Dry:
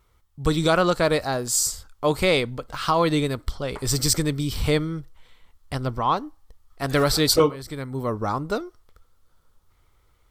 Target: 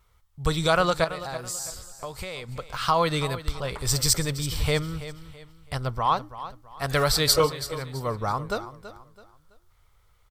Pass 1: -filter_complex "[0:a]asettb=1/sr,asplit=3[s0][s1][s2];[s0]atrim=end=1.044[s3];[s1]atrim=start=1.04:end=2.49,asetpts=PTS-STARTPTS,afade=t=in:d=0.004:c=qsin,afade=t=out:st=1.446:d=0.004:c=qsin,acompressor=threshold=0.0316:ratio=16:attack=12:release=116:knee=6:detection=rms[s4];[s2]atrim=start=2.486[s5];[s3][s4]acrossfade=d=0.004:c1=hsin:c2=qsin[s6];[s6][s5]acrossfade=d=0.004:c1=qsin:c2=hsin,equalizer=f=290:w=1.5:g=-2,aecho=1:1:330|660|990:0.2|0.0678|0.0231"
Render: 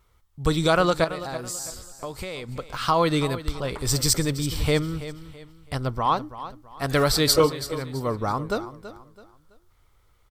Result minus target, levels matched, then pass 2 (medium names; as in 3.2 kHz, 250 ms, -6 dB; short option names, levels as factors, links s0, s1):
250 Hz band +4.5 dB
-filter_complex "[0:a]asettb=1/sr,asplit=3[s0][s1][s2];[s0]atrim=end=1.044[s3];[s1]atrim=start=1.04:end=2.49,asetpts=PTS-STARTPTS,afade=t=in:d=0.004:c=qsin,afade=t=out:st=1.446:d=0.004:c=qsin,acompressor=threshold=0.0316:ratio=16:attack=12:release=116:knee=6:detection=rms[s4];[s2]atrim=start=2.486[s5];[s3][s4]acrossfade=d=0.004:c1=hsin:c2=qsin[s6];[s6][s5]acrossfade=d=0.004:c1=qsin:c2=hsin,equalizer=f=290:w=1.5:g=-11,aecho=1:1:330|660|990:0.2|0.0678|0.0231"